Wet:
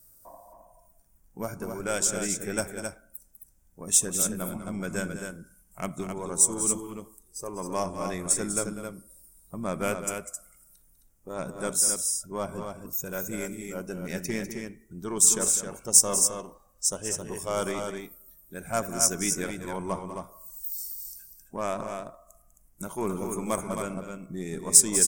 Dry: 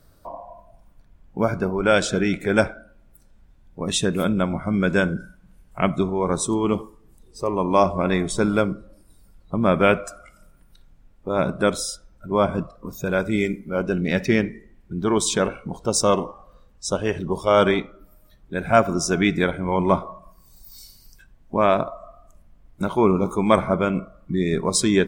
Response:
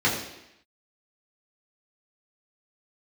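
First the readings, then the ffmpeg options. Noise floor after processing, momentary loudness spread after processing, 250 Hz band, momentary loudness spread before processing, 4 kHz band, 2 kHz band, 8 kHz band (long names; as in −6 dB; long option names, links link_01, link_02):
−61 dBFS, 19 LU, −12.0 dB, 12 LU, −5.5 dB, −11.5 dB, +8.0 dB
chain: -af "aeval=exprs='0.794*(cos(1*acos(clip(val(0)/0.794,-1,1)))-cos(1*PI/2))+0.02*(cos(6*acos(clip(val(0)/0.794,-1,1)))-cos(6*PI/2))+0.0355*(cos(8*acos(clip(val(0)/0.794,-1,1)))-cos(8*PI/2))':channel_layout=same,aecho=1:1:198.3|265.3:0.282|0.501,aexciter=amount=14.3:drive=2.9:freq=5800,volume=-13dB"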